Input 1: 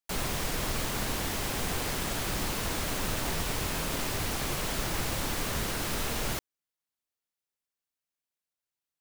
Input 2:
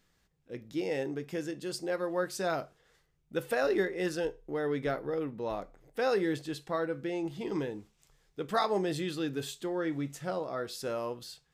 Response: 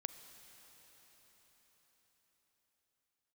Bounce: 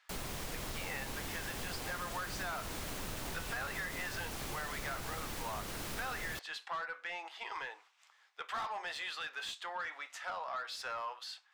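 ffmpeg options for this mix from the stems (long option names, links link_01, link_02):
-filter_complex "[0:a]volume=-7.5dB[link_01];[1:a]highpass=frequency=860:width=0.5412,highpass=frequency=860:width=1.3066,highshelf=frequency=6300:gain=-10,asplit=2[link_02][link_03];[link_03]highpass=frequency=720:poles=1,volume=22dB,asoftclip=type=tanh:threshold=-19.5dB[link_04];[link_02][link_04]amix=inputs=2:normalize=0,lowpass=frequency=2500:poles=1,volume=-6dB,volume=-5dB[link_05];[link_01][link_05]amix=inputs=2:normalize=0,acompressor=threshold=-37dB:ratio=4"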